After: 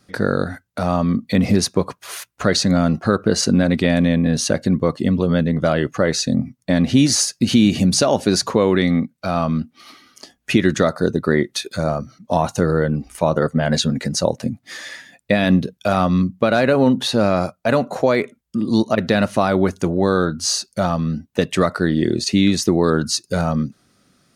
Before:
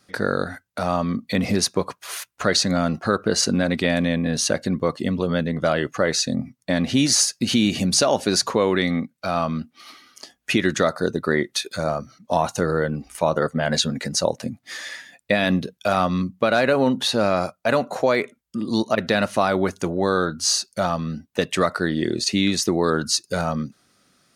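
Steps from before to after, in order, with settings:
low-shelf EQ 380 Hz +8 dB

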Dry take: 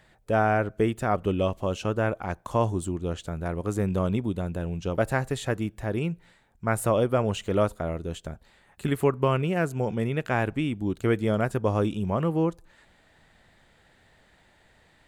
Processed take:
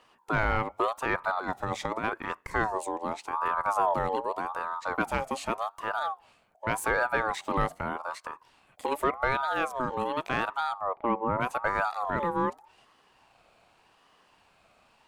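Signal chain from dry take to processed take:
0:01.37–0:02.04: compressor whose output falls as the input rises −27 dBFS, ratio −0.5
0:03.33–0:03.94: low-shelf EQ 210 Hz +9.5 dB
0:10.79–0:11.40: low-pass filter 2,000 Hz → 1,100 Hz 24 dB per octave
soft clipping −14 dBFS, distortion −20 dB
ring modulator whose carrier an LFO sweeps 880 Hz, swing 25%, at 0.85 Hz

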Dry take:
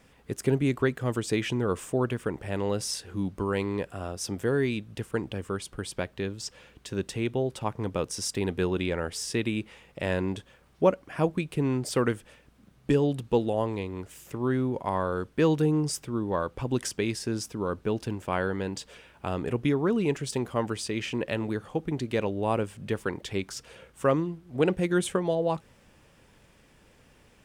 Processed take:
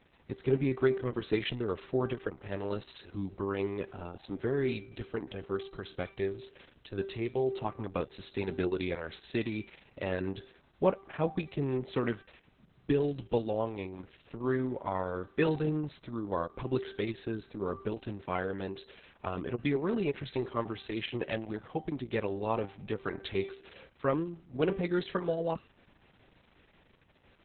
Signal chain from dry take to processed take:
tuned comb filter 390 Hz, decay 0.64 s, mix 70%
level +6 dB
Opus 6 kbit/s 48,000 Hz

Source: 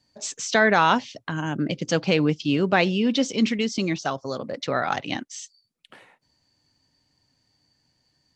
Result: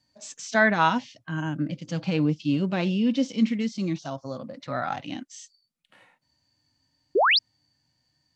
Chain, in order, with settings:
harmonic and percussive parts rebalanced percussive −14 dB
parametric band 420 Hz −10.5 dB 0.29 octaves
sound drawn into the spectrogram rise, 0:07.15–0:07.39, 330–5,500 Hz −19 dBFS

